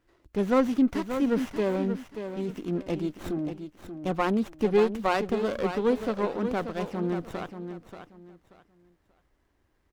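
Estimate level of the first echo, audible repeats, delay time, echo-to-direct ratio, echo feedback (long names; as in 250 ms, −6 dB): −9.0 dB, 3, 583 ms, −8.5 dB, 25%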